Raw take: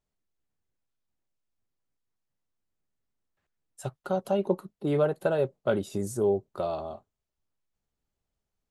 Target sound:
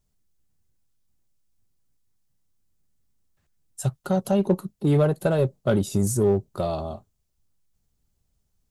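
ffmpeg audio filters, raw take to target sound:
ffmpeg -i in.wav -filter_complex "[0:a]bass=frequency=250:gain=11,treble=frequency=4000:gain=9,asplit=2[link_01][link_02];[link_02]asoftclip=type=hard:threshold=-23dB,volume=-8dB[link_03];[link_01][link_03]amix=inputs=2:normalize=0" out.wav

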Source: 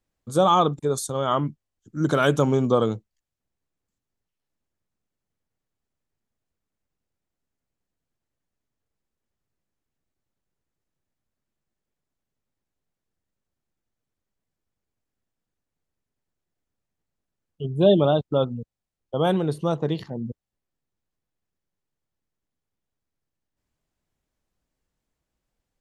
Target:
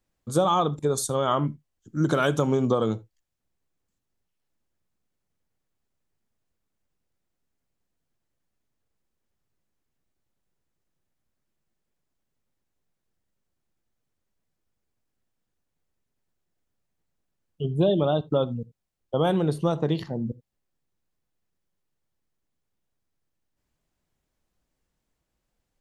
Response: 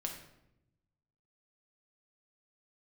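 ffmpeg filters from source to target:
-filter_complex "[0:a]acompressor=threshold=-20dB:ratio=6,asplit=2[link_01][link_02];[1:a]atrim=start_sample=2205,atrim=end_sample=3969[link_03];[link_02][link_03]afir=irnorm=-1:irlink=0,volume=-10dB[link_04];[link_01][link_04]amix=inputs=2:normalize=0"

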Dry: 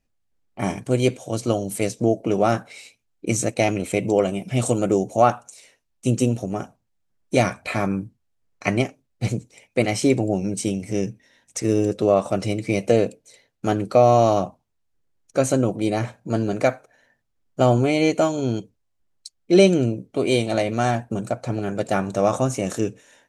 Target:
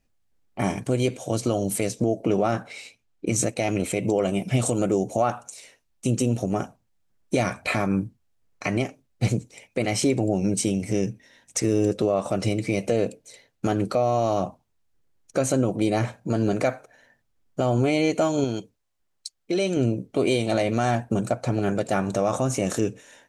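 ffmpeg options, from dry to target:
ffmpeg -i in.wav -filter_complex "[0:a]asettb=1/sr,asplit=3[link_01][link_02][link_03];[link_01]atrim=end=2.264[link_04];[link_02]atrim=start=2.26:end=3.36,asetpts=PTS-STARTPTS,afade=type=in:duration=0.004:curve=qsin,afade=type=out:start_time=1.096:duration=0.004:curve=qsin,highshelf=frequency=7300:gain=-7.5[link_05];[link_03]atrim=start=3.356[link_06];[link_04][link_05]acrossfade=duration=0.004:curve1=hsin:curve2=qsin[link_07];[link_07][link_06]acrossfade=duration=0.004:curve1=qsin:curve2=hsin,alimiter=limit=-15dB:level=0:latency=1:release=140,asettb=1/sr,asplit=3[link_08][link_09][link_10];[link_08]atrim=end=18.444[link_11];[link_09]atrim=start=18.44:end=19.77,asetpts=PTS-STARTPTS,afade=type=in:duration=0.004:curve=qsin,afade=type=out:start_time=1.326:duration=0.004:curve=qsin,lowshelf=frequency=380:gain=-8[link_12];[link_10]atrim=start=19.766[link_13];[link_11][link_12]acrossfade=duration=0.004:curve1=hsin:curve2=qsin[link_14];[link_14][link_13]acrossfade=duration=0.004:curve1=qsin:curve2=hsin,volume=3dB" out.wav

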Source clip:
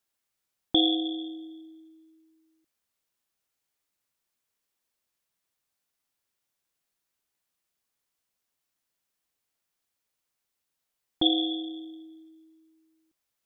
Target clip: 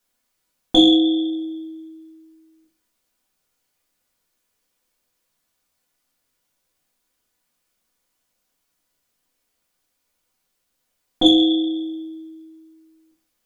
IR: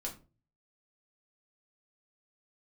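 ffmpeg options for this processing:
-filter_complex "[0:a]acontrast=82[link_01];[1:a]atrim=start_sample=2205[link_02];[link_01][link_02]afir=irnorm=-1:irlink=0,volume=3dB"

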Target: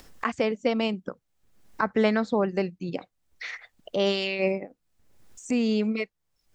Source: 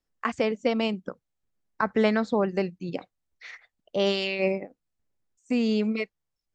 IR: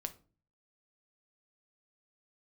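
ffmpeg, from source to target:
-af "acompressor=mode=upward:threshold=-28dB:ratio=2.5"

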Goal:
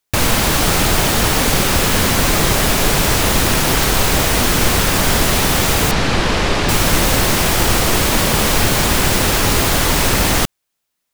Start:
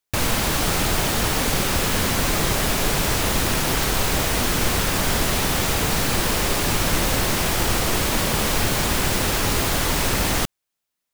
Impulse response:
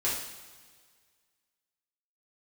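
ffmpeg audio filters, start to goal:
-filter_complex "[0:a]asettb=1/sr,asplit=3[link_01][link_02][link_03];[link_01]atrim=end=5.914[link_04];[link_02]atrim=start=5.91:end=6.69,asetpts=PTS-STARTPTS,afade=type=in:duration=0.004:curve=qsin,afade=type=out:start_time=0.776:duration=0.004:curve=qsin,lowpass=4600[link_05];[link_03]atrim=start=6.686[link_06];[link_04][link_05]acrossfade=duration=0.004:curve1=hsin:curve2=qsin[link_07];[link_07][link_06]acrossfade=duration=0.004:curve1=qsin:curve2=hsin,volume=6.5dB"

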